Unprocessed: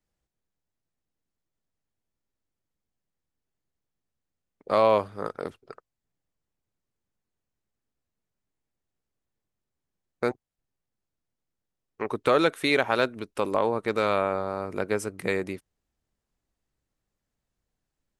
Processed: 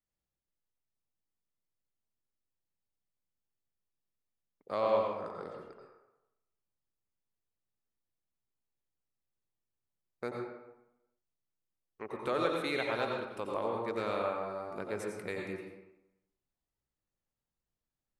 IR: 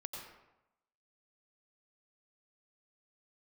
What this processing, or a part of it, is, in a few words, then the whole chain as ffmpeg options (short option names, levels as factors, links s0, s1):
bathroom: -filter_complex "[1:a]atrim=start_sample=2205[s0];[0:a][s0]afir=irnorm=-1:irlink=0,asettb=1/sr,asplit=3[s1][s2][s3];[s1]atrim=end=4.744[s4];[s2]atrim=start=4.74:end=5.58,asetpts=PTS-STARTPTS,afade=t=in:d=0.004:c=qsin,afade=t=out:st=0.836:d=0.004:c=qsin,lowpass=f=8600:w=0.5412,lowpass=f=8600:w=1.3066[s5];[s3]atrim=start=5.576[s6];[s4][s5]acrossfade=d=0.004:c1=hsin:c2=qsin[s7];[s7][s6]acrossfade=d=0.004:c1=qsin:c2=hsin,volume=0.422"